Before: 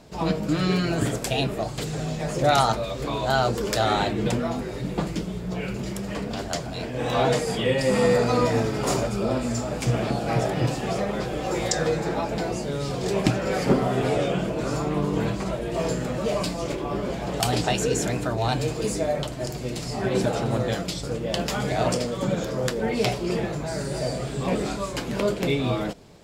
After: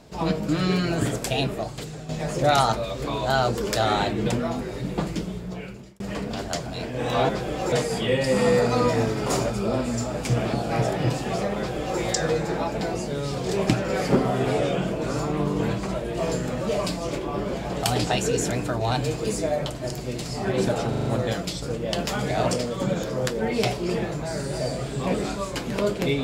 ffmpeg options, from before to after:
-filter_complex "[0:a]asplit=9[s0][s1][s2][s3][s4][s5][s6][s7][s8];[s0]atrim=end=2.09,asetpts=PTS-STARTPTS,afade=t=out:st=1.47:d=0.62:silence=0.281838[s9];[s1]atrim=start=2.09:end=6,asetpts=PTS-STARTPTS,afade=t=in:d=0.004:c=hsin:silence=0.281838,afade=t=out:st=3.17:d=0.74[s10];[s2]atrim=start=6:end=7.292,asetpts=PTS-STARTPTS,afade=t=in:d=0.004:c=hsin[s11];[s3]atrim=start=11.138:end=11.572[s12];[s4]atrim=start=7.288:end=20.502[s13];[s5]atrim=start=20.458:end=20.502[s14];[s6]atrim=start=20.458:end=20.502[s15];[s7]atrim=start=20.458:end=20.502[s16];[s8]atrim=start=20.458[s17];[s9][s10][s11]concat=n=3:v=0:a=1[s18];[s18][s12]acrossfade=d=0.004:c1=hsin:c2=hsin[s19];[s19][s13]acrossfade=d=0.004:c1=hsin:c2=hsin[s20];[s20][s14]acrossfade=d=0.004:c1=hsin:c2=hsin[s21];[s21][s15]acrossfade=d=0.004:c1=hsin:c2=hsin[s22];[s22][s16]acrossfade=d=0.004:c1=hsin:c2=hsin[s23];[s23][s17]acrossfade=d=0.004:c1=hsin:c2=hsin"

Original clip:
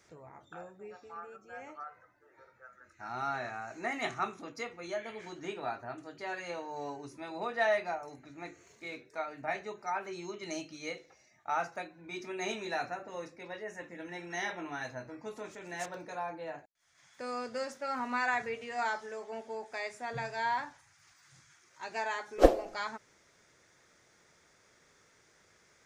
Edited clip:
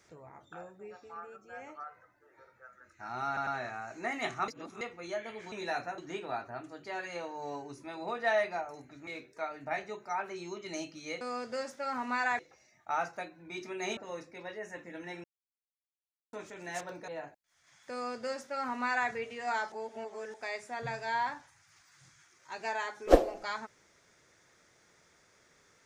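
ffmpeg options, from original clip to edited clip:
-filter_complex "[0:a]asplit=16[s0][s1][s2][s3][s4][s5][s6][s7][s8][s9][s10][s11][s12][s13][s14][s15];[s0]atrim=end=3.372[s16];[s1]atrim=start=3.268:end=3.372[s17];[s2]atrim=start=3.268:end=4.282[s18];[s3]atrim=start=4.278:end=4.612,asetpts=PTS-STARTPTS,areverse[s19];[s4]atrim=start=4.608:end=5.322[s20];[s5]atrim=start=12.558:end=13.022[s21];[s6]atrim=start=5.318:end=8.412[s22];[s7]atrim=start=8.838:end=10.982[s23];[s8]atrim=start=17.228:end=18.412[s24];[s9]atrim=start=10.978:end=12.562[s25];[s10]atrim=start=13.018:end=14.29,asetpts=PTS-STARTPTS,afade=t=out:st=1.268:d=0.004:c=hsin[s26];[s11]atrim=start=14.29:end=15.38,asetpts=PTS-STARTPTS,volume=0[s27];[s12]atrim=start=15.38:end=16.132,asetpts=PTS-STARTPTS,afade=t=in:d=0.004:c=hsin[s28];[s13]atrim=start=16.388:end=19.032[s29];[s14]atrim=start=19.028:end=19.652,asetpts=PTS-STARTPTS,areverse[s30];[s15]atrim=start=19.648[s31];[s16][s17]acrossfade=d=0.004:c1=hsin:c2=hsin[s32];[s32][s18]acrossfade=d=0.004:c1=hsin:c2=hsin[s33];[s33][s19]acrossfade=d=0.004:c1=hsin:c2=hsin[s34];[s34][s20]acrossfade=d=0.004:c1=hsin:c2=hsin[s35];[s35][s21]acrossfade=d=0.004:c1=hsin:c2=hsin[s36];[s36][s22]acrossfade=d=0.004:c1=hsin:c2=hsin[s37];[s37][s23]acrossfade=d=0.004:c1=hsin:c2=hsin[s38];[s38][s24]acrossfade=d=0.004:c1=hsin:c2=hsin[s39];[s39][s25]acrossfade=d=0.004:c1=hsin:c2=hsin[s40];[s26][s27][s28]concat=n=3:v=0:a=1[s41];[s40][s41]acrossfade=d=0.004:c1=hsin:c2=hsin[s42];[s42][s29]acrossfade=d=0.004:c1=hsin:c2=hsin[s43];[s43][s30]acrossfade=d=0.004:c1=hsin:c2=hsin[s44];[s44][s31]acrossfade=d=0.004:c1=hsin:c2=hsin"

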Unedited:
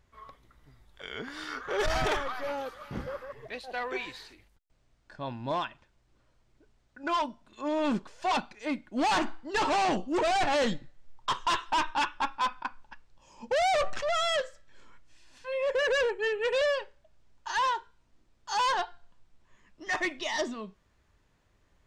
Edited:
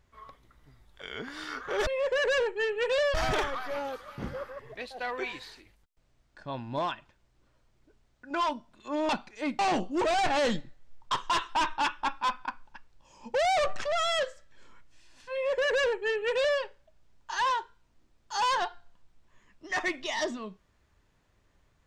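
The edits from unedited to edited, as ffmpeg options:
-filter_complex "[0:a]asplit=5[s0][s1][s2][s3][s4];[s0]atrim=end=1.872[s5];[s1]atrim=start=15.498:end=16.772[s6];[s2]atrim=start=1.868:end=7.822[s7];[s3]atrim=start=8.328:end=8.832[s8];[s4]atrim=start=9.758[s9];[s5][s6]acrossfade=d=0.004:c1=hsin:c2=hsin[s10];[s10][s7]acrossfade=d=0.004:c1=hsin:c2=hsin[s11];[s11][s8]acrossfade=d=0.004:c1=hsin:c2=hsin[s12];[s12][s9]acrossfade=d=0.004:c1=hsin:c2=hsin"

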